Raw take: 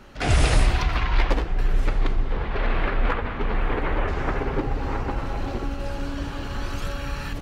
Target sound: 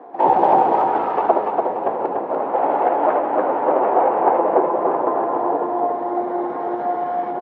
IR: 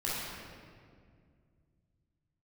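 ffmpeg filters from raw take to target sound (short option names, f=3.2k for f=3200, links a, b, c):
-af "highpass=f=250:w=0.5412,highpass=f=250:w=1.3066,lowshelf=f=330:g=8.5,asetrate=55563,aresample=44100,atempo=0.793701,lowpass=f=820:t=q:w=4.9,aecho=1:1:291|582|873|1164|1455:0.631|0.233|0.0864|0.032|0.0118,volume=3.5dB"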